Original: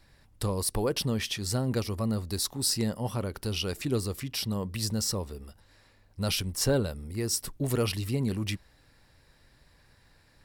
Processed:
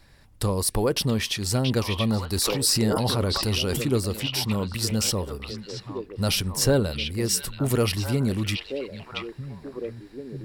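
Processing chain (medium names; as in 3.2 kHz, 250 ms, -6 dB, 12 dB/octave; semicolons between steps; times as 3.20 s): repeats whose band climbs or falls 679 ms, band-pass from 2.8 kHz, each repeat -1.4 oct, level -1.5 dB; 2.33–3.83 s: decay stretcher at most 20 dB/s; trim +5 dB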